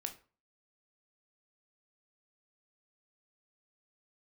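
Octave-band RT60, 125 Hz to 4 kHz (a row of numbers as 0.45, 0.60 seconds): 0.40, 0.40, 0.35, 0.40, 0.30, 0.25 seconds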